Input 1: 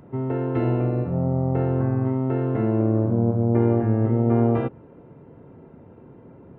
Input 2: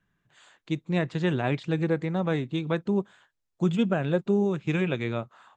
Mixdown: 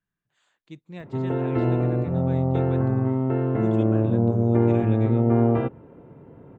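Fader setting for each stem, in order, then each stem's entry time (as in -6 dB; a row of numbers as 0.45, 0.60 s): 0.0, -13.0 dB; 1.00, 0.00 s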